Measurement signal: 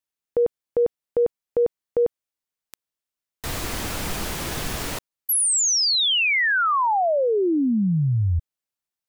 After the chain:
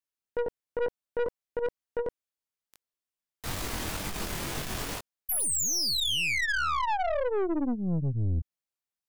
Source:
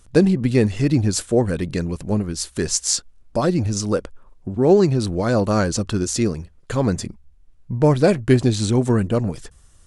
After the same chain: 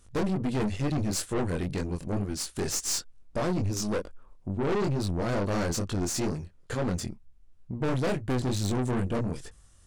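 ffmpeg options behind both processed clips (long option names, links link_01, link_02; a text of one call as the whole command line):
ffmpeg -i in.wav -af "flanger=delay=20:depth=4.1:speed=2.2,aeval=exprs='(tanh(17.8*val(0)+0.5)-tanh(0.5))/17.8':channel_layout=same" out.wav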